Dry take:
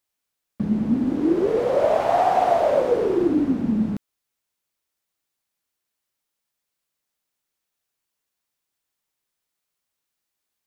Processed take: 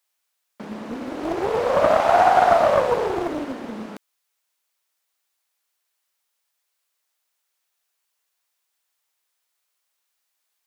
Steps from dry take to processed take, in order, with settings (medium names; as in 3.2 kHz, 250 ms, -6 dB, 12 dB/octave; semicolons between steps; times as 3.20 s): high-pass 610 Hz 12 dB/octave; loudspeaker Doppler distortion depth 0.69 ms; trim +5.5 dB